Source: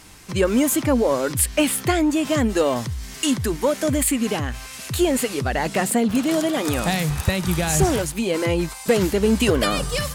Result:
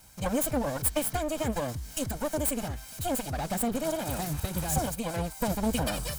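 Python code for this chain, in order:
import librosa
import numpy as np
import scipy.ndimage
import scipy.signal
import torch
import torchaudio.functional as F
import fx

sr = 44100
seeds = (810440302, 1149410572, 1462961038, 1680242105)

y = fx.lower_of_two(x, sr, delay_ms=1.3)
y = fx.peak_eq(y, sr, hz=2500.0, db=-4.5, octaves=1.7)
y = fx.stretch_vocoder(y, sr, factor=0.61)
y = fx.high_shelf(y, sr, hz=11000.0, db=9.5)
y = y * 10.0 ** (-7.0 / 20.0)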